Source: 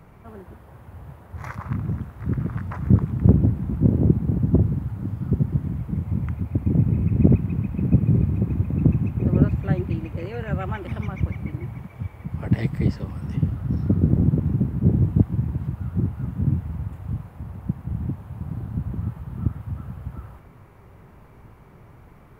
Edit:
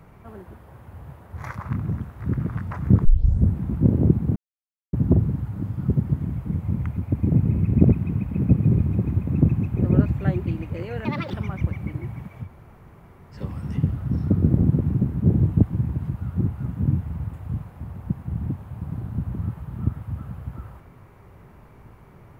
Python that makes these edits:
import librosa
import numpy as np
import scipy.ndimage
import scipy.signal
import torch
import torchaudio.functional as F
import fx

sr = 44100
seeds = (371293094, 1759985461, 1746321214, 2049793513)

y = fx.edit(x, sr, fx.tape_start(start_s=3.05, length_s=0.51),
    fx.insert_silence(at_s=4.36, length_s=0.57),
    fx.speed_span(start_s=10.48, length_s=0.45, speed=1.56),
    fx.room_tone_fill(start_s=12.04, length_s=0.91, crossfade_s=0.1), tone=tone)